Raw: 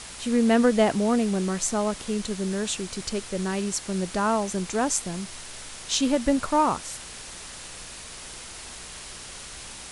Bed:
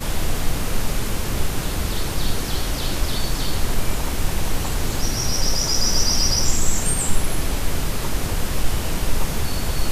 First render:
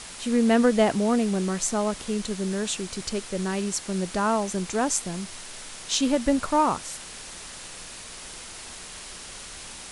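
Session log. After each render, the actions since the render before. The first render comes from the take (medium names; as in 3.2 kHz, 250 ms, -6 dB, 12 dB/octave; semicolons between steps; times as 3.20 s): de-hum 60 Hz, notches 2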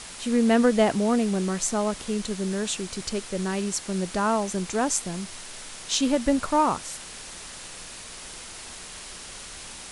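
no audible change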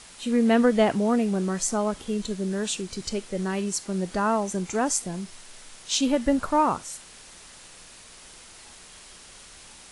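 noise print and reduce 7 dB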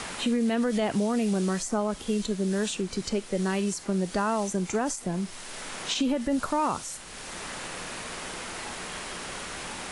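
peak limiter -18 dBFS, peak gain reduction 9.5 dB; three bands compressed up and down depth 70%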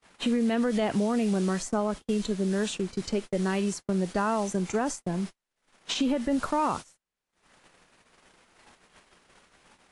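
gate -33 dBFS, range -47 dB; treble shelf 6.4 kHz -6 dB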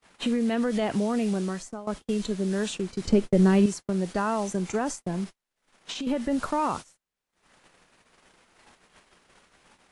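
1.27–1.87 s: fade out, to -16 dB; 3.05–3.66 s: bass shelf 470 Hz +11.5 dB; 5.24–6.07 s: compression 2:1, threshold -35 dBFS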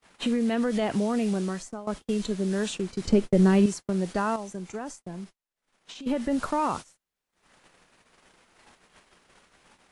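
4.36–6.06 s: gain -8 dB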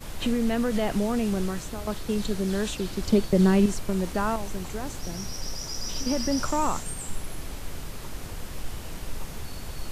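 add bed -13.5 dB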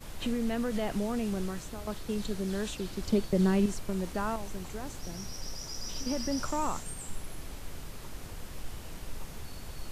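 trim -6 dB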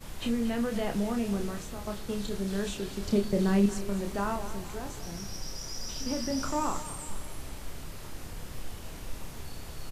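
doubling 30 ms -5.5 dB; two-band feedback delay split 340 Hz, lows 120 ms, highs 228 ms, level -13.5 dB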